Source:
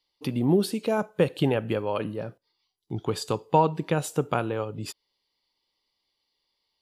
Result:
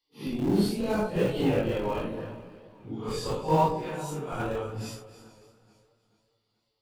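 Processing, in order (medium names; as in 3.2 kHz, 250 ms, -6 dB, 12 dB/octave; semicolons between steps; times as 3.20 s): phase randomisation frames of 200 ms; on a send at -16 dB: reverberation RT60 0.50 s, pre-delay 3 ms; 3.70–4.40 s: on the sum: compression 5:1, threshold -29 dBFS, peak gain reduction 7 dB; in parallel at -7 dB: Schmitt trigger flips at -21.5 dBFS; on the sum: peaking EQ 9.8 kHz -3 dB 0.24 oct; echo whose repeats swap between lows and highs 142 ms, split 870 Hz, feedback 62%, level -10.5 dB; chorus 0.79 Hz, delay 16.5 ms, depth 7.1 ms; modulated delay 432 ms, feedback 39%, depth 71 cents, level -20 dB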